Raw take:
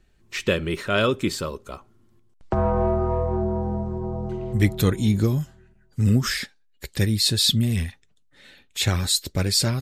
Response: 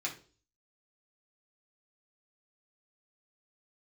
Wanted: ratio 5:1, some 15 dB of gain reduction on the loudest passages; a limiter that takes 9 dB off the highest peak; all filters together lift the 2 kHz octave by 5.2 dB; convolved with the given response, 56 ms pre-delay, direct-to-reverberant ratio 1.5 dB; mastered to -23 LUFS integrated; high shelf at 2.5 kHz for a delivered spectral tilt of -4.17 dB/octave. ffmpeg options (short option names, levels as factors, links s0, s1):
-filter_complex "[0:a]equalizer=f=2000:t=o:g=4,highshelf=f=2500:g=5.5,acompressor=threshold=0.0355:ratio=5,alimiter=limit=0.075:level=0:latency=1,asplit=2[s0][s1];[1:a]atrim=start_sample=2205,adelay=56[s2];[s1][s2]afir=irnorm=-1:irlink=0,volume=0.596[s3];[s0][s3]amix=inputs=2:normalize=0,volume=2.82"